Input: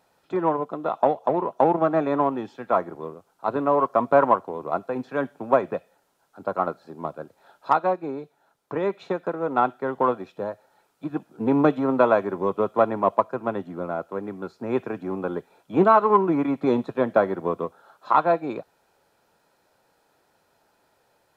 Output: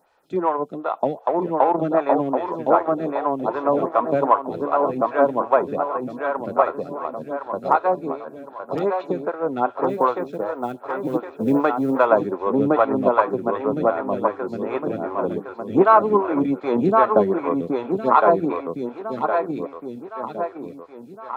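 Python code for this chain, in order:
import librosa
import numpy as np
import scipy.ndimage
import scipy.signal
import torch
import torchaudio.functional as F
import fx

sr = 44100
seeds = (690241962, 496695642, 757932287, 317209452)

y = fx.echo_feedback(x, sr, ms=1062, feedback_pct=51, wet_db=-3.0)
y = fx.quant_companded(y, sr, bits=8, at=(9.88, 12.05), fade=0.02)
y = fx.stagger_phaser(y, sr, hz=2.6)
y = y * 10.0 ** (3.5 / 20.0)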